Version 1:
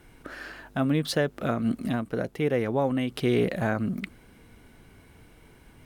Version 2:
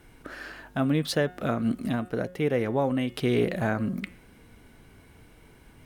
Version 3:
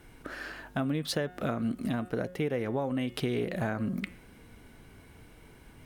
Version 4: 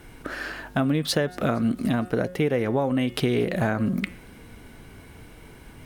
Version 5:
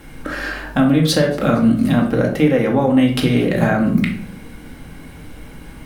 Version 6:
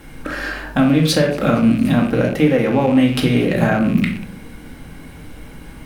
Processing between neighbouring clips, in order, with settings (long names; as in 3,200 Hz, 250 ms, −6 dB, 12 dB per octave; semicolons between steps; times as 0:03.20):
hum removal 180.7 Hz, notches 20
downward compressor, threshold −27 dBFS, peak gain reduction 8 dB
delay with a high-pass on its return 231 ms, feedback 57%, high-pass 5,400 Hz, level −21 dB; level +7.5 dB
rectangular room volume 640 cubic metres, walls furnished, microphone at 2.2 metres; level +4.5 dB
loose part that buzzes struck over −25 dBFS, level −23 dBFS